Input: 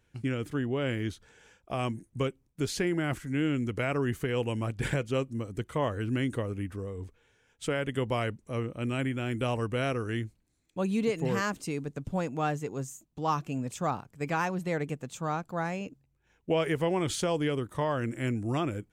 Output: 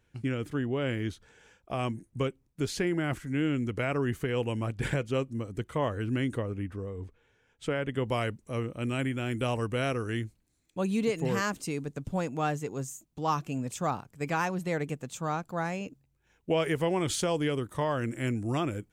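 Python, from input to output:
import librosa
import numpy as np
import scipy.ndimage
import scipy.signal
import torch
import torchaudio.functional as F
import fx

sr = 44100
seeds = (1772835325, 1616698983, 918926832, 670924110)

y = fx.high_shelf(x, sr, hz=4700.0, db=fx.steps((0.0, -2.5), (6.37, -10.0), (8.04, 3.5)))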